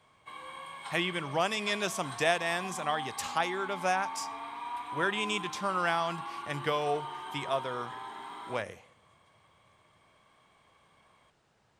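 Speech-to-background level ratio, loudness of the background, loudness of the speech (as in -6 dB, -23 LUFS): 8.5 dB, -41.0 LUFS, -32.5 LUFS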